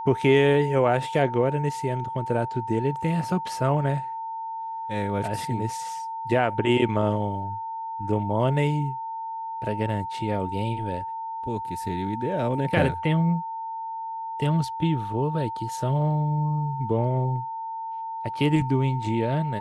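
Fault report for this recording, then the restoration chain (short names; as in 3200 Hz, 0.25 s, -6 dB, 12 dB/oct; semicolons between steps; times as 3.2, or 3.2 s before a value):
tone 900 Hz -30 dBFS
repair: notch 900 Hz, Q 30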